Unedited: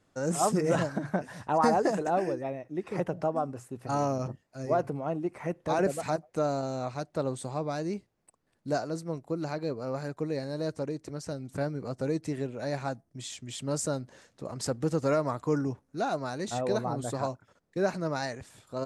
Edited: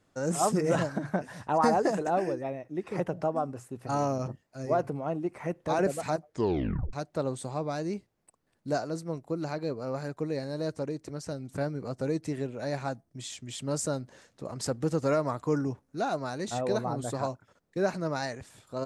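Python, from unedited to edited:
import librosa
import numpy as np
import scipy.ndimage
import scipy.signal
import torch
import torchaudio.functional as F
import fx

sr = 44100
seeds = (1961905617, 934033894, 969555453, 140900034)

y = fx.edit(x, sr, fx.tape_stop(start_s=6.24, length_s=0.69), tone=tone)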